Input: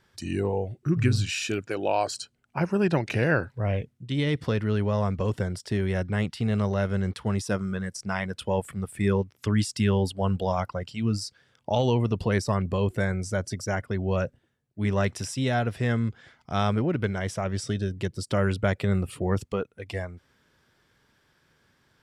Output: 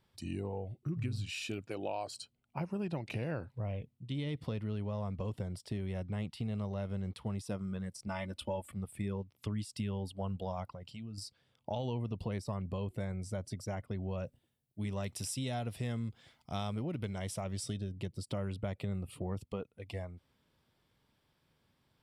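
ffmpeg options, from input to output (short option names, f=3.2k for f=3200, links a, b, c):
-filter_complex "[0:a]asettb=1/sr,asplit=3[a][b][c];[a]atrim=end=8.074[d];[b]atrim=start=8.07:end=8.72,asetpts=PTS-STARTPTS,afade=t=in:d=0.004:c=qsin,afade=t=out:st=0.646:d=0.004:c=qsin,aecho=1:1:3.4:0.85,atrim=end_sample=28665[e];[c]atrim=start=8.716[f];[d][e]acrossfade=d=0.004:c1=hsin:c2=qsin[g];[g][f]acrossfade=d=0.004:c1=qsin:c2=hsin,asettb=1/sr,asplit=3[h][i][j];[h]atrim=end=10.744[k];[i]atrim=start=10.74:end=11.18,asetpts=PTS-STARTPTS,afade=t=in:d=0.004:c=qsin,afade=t=out:st=0.436:d=0.004:c=qsin,acompressor=threshold=-35dB:ratio=6:attack=3.2:release=140:knee=1:detection=peak[l];[j]atrim=start=11.176[m];[k][l]acrossfade=d=0.004:c1=hsin:c2=qsin[n];[n][m]acrossfade=d=0.004:c1=qsin:c2=hsin,asettb=1/sr,asplit=3[o][p][q];[o]atrim=end=14.234[r];[p]atrim=start=14.23:end=17.77,asetpts=PTS-STARTPTS,afade=t=in:d=0.004:c=qsin,afade=t=out:st=3.536:d=0.004:c=qsin,highshelf=f=4.3k:g=11.5[s];[q]atrim=start=17.766[t];[r][s]acrossfade=d=0.004:c1=hsin:c2=qsin[u];[u][t]acrossfade=d=0.004:c1=qsin:c2=hsin,equalizer=f=400:t=o:w=0.67:g=-4,equalizer=f=1.6k:t=o:w=0.67:g=-11,equalizer=f=6.3k:t=o:w=0.67:g=-8,acompressor=threshold=-28dB:ratio=4,volume=-6dB"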